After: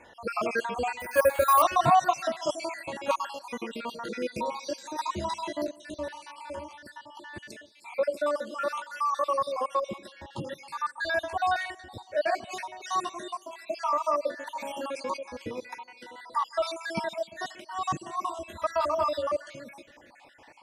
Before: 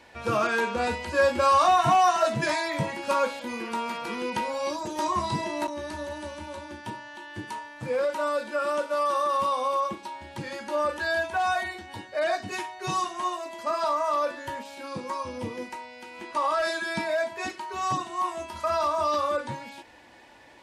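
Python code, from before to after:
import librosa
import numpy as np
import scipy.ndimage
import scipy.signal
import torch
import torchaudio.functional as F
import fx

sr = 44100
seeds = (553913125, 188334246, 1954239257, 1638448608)

y = fx.spec_dropout(x, sr, seeds[0], share_pct=56)
y = fx.peak_eq(y, sr, hz=560.0, db=2.5, octaves=0.77)
y = fx.echo_tape(y, sr, ms=153, feedback_pct=68, wet_db=-22, lp_hz=1300.0, drive_db=8.0, wow_cents=13)
y = fx.resample_bad(y, sr, factor=4, down='filtered', up='hold', at=(1.0, 1.62))
y = fx.env_flatten(y, sr, amount_pct=50, at=(14.55, 15.17))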